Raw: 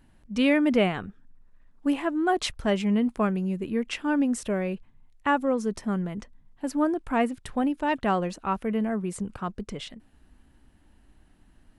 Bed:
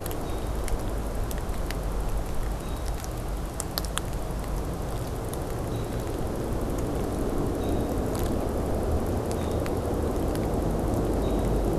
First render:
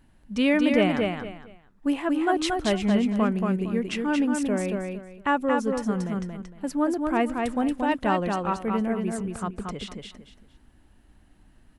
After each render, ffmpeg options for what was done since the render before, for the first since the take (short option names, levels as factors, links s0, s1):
-af "aecho=1:1:229|458|687:0.631|0.158|0.0394"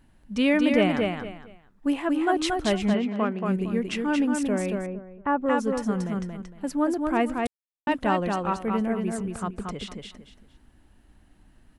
-filter_complex "[0:a]asplit=3[s0][s1][s2];[s0]afade=t=out:st=2.93:d=0.02[s3];[s1]highpass=250,lowpass=3800,afade=t=in:st=2.93:d=0.02,afade=t=out:st=3.44:d=0.02[s4];[s2]afade=t=in:st=3.44:d=0.02[s5];[s3][s4][s5]amix=inputs=3:normalize=0,asettb=1/sr,asplit=3[s6][s7][s8];[s6]atrim=end=4.864[s9];[s7]atrim=start=4.86:end=5.46,asetpts=PTS-STARTPTS,afade=t=in:d=0.004:c=qsin,afade=t=out:st=0.596:d=0.004:c=qsin,lowpass=1300[s10];[s8]atrim=start=5.456[s11];[s9][s10]acrossfade=d=0.004:c1=hsin:c2=qsin[s12];[s12][s11]acrossfade=d=0.004:c1=qsin:c2=hsin,asplit=3[s13][s14][s15];[s13]atrim=end=7.47,asetpts=PTS-STARTPTS,afade=t=out:st=7.466:d=0.004:c=hsin[s16];[s14]atrim=start=7.47:end=7.87,asetpts=PTS-STARTPTS,volume=0[s17];[s15]atrim=start=7.87,asetpts=PTS-STARTPTS,afade=t=in:d=0.004:c=hsin[s18];[s16][s17][s18]concat=n=3:v=0:a=1"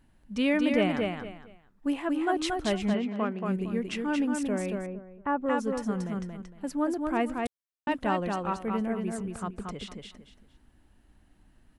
-af "volume=0.631"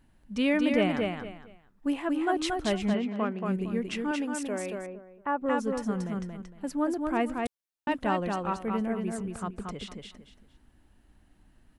-filter_complex "[0:a]asettb=1/sr,asplit=3[s0][s1][s2];[s0]atrim=end=4.114[s3];[s1]atrim=start=4.11:end=5.42,asetpts=PTS-STARTPTS,afade=t=in:d=0.004:c=qsin,afade=t=out:st=1.306:d=0.004:c=qsin,bass=f=250:g=-11,treble=f=4000:g=2[s4];[s2]atrim=start=5.416[s5];[s3][s4]acrossfade=d=0.004:c1=hsin:c2=qsin[s6];[s6][s5]acrossfade=d=0.004:c1=qsin:c2=hsin"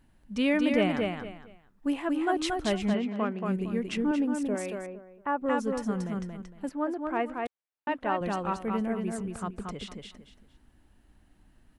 -filter_complex "[0:a]asettb=1/sr,asplit=3[s0][s1][s2];[s0]atrim=end=3.974[s3];[s1]atrim=start=3.97:end=4.55,asetpts=PTS-STARTPTS,afade=t=in:d=0.004:c=qsin,afade=t=out:st=0.576:d=0.004:c=qsin,tiltshelf=f=640:g=7[s4];[s2]atrim=start=4.546[s5];[s3][s4]acrossfade=d=0.004:c1=hsin:c2=qsin[s6];[s6][s5]acrossfade=d=0.004:c1=qsin:c2=hsin,asettb=1/sr,asplit=3[s7][s8][s9];[s7]atrim=end=6.694[s10];[s8]atrim=start=6.69:end=8.21,asetpts=PTS-STARTPTS,afade=t=in:d=0.004:c=qsin,afade=t=out:st=1.516:d=0.004:c=qsin,bass=f=250:g=-11,treble=f=4000:g=-15[s11];[s9]atrim=start=8.206[s12];[s10][s11]acrossfade=d=0.004:c1=hsin:c2=qsin[s13];[s13][s12]acrossfade=d=0.004:c1=qsin:c2=hsin"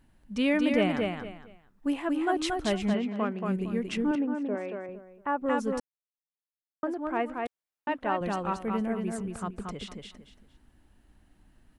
-filter_complex "[0:a]asettb=1/sr,asplit=3[s0][s1][s2];[s0]atrim=end=4.154[s3];[s1]atrim=start=4.15:end=4.89,asetpts=PTS-STARTPTS,afade=t=in:d=0.004:c=qsin,afade=t=out:st=0.736:d=0.004:c=qsin,highpass=220,lowpass=2200[s4];[s2]atrim=start=4.886[s5];[s3][s4]acrossfade=d=0.004:c1=hsin:c2=qsin[s6];[s6][s5]acrossfade=d=0.004:c1=qsin:c2=hsin,asplit=3[s7][s8][s9];[s7]atrim=end=5.8,asetpts=PTS-STARTPTS,afade=t=out:st=5.796:d=0.004:c=hsin[s10];[s8]atrim=start=5.8:end=6.83,asetpts=PTS-STARTPTS,volume=0[s11];[s9]atrim=start=6.83,asetpts=PTS-STARTPTS,afade=t=in:d=0.004:c=hsin[s12];[s10][s11][s12]concat=n=3:v=0:a=1"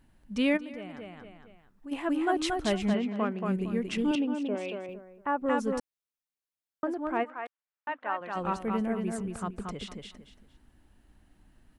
-filter_complex "[0:a]asplit=3[s0][s1][s2];[s0]afade=t=out:st=0.56:d=0.02[s3];[s1]acompressor=threshold=0.00282:ratio=2:attack=3.2:release=140:knee=1:detection=peak,afade=t=in:st=0.56:d=0.02,afade=t=out:st=1.91:d=0.02[s4];[s2]afade=t=in:st=1.91:d=0.02[s5];[s3][s4][s5]amix=inputs=3:normalize=0,asettb=1/sr,asplit=3[s6][s7][s8];[s6]atrim=end=3.984[s9];[s7]atrim=start=3.98:end=4.94,asetpts=PTS-STARTPTS,afade=t=in:d=0.004:c=qsin,afade=t=out:st=0.956:d=0.004:c=qsin,highshelf=f=2300:t=q:w=3:g=8.5[s10];[s8]atrim=start=4.936[s11];[s9][s10]acrossfade=d=0.004:c1=hsin:c2=qsin[s12];[s12][s11]acrossfade=d=0.004:c1=qsin:c2=hsin,asplit=3[s13][s14][s15];[s13]afade=t=out:st=7.23:d=0.02[s16];[s14]bandpass=f=1400:t=q:w=1,afade=t=in:st=7.23:d=0.02,afade=t=out:st=8.35:d=0.02[s17];[s15]afade=t=in:st=8.35:d=0.02[s18];[s16][s17][s18]amix=inputs=3:normalize=0"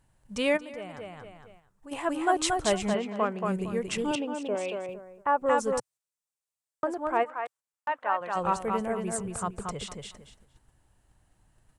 -af "agate=range=0.501:threshold=0.00178:ratio=16:detection=peak,equalizer=f=125:t=o:w=1:g=9,equalizer=f=250:t=o:w=1:g=-9,equalizer=f=500:t=o:w=1:g=5,equalizer=f=1000:t=o:w=1:g=5,equalizer=f=8000:t=o:w=1:g=12"